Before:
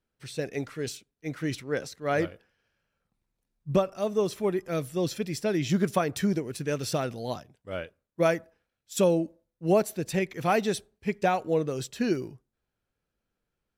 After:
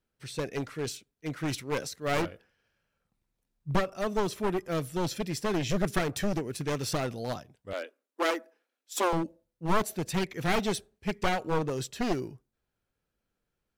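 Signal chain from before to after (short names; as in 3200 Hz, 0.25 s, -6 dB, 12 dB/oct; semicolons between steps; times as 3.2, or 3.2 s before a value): one-sided fold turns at -26.5 dBFS; 1.48–2.22 high shelf 5100 Hz +6.5 dB; 7.73–9.13 steep high-pass 240 Hz 72 dB/oct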